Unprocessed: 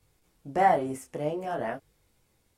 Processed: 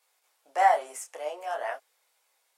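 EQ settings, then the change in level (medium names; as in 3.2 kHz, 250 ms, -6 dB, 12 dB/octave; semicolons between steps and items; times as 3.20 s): dynamic bell 6.9 kHz, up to +7 dB, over -56 dBFS, Q 1.3; high-pass 630 Hz 24 dB/octave; +2.0 dB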